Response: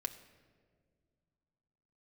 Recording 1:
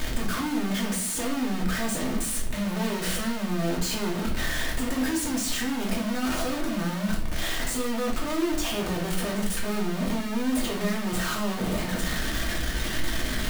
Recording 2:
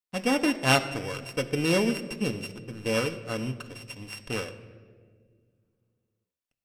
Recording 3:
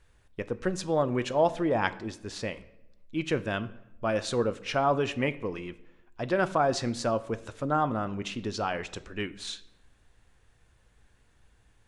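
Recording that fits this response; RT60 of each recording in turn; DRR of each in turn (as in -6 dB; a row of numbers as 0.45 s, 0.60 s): 2; 0.50 s, 1.9 s, 0.85 s; -3.0 dB, 6.0 dB, 13.0 dB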